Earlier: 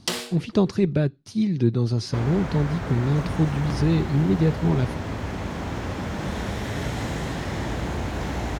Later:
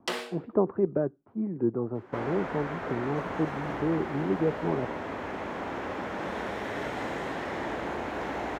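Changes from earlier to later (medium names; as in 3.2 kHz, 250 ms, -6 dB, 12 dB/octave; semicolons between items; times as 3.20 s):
speech: add low-pass 1.2 kHz 24 dB/octave; master: add three-band isolator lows -19 dB, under 270 Hz, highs -13 dB, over 2.7 kHz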